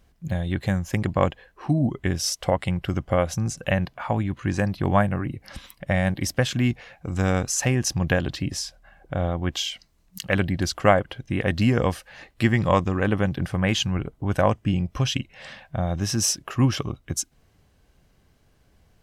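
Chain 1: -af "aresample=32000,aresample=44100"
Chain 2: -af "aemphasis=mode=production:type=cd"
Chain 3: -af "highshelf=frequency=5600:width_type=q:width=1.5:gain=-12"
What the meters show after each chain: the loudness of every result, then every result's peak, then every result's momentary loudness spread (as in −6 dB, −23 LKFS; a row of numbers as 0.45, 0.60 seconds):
−24.5, −23.5, −24.5 LKFS; −3.0, −2.5, −2.5 dBFS; 9, 10, 12 LU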